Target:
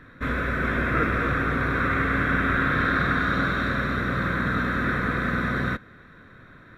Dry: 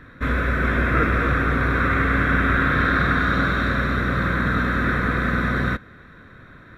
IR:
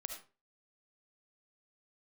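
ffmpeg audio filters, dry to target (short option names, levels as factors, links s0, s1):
-af "equalizer=f=60:w=1.5:g=-5,volume=0.708"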